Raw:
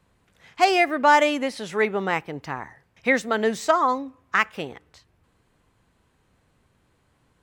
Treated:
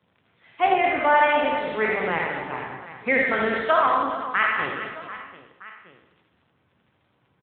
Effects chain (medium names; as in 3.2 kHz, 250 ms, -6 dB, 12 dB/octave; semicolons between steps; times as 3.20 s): spectral sustain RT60 0.93 s; high-pass 66 Hz 24 dB/octave; 0.67–1.10 s: distance through air 330 m; crackle 21 per s -36 dBFS; 2.05–2.58 s: expander -27 dBFS; 3.46–3.95 s: tilt shelf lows -4 dB, about 760 Hz; hum notches 50/100/150/200/250/300/350/400/450 Hz; reverse bouncing-ball echo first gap 80 ms, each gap 1.6×, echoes 5; trim -3.5 dB; AMR-NB 10.2 kbps 8 kHz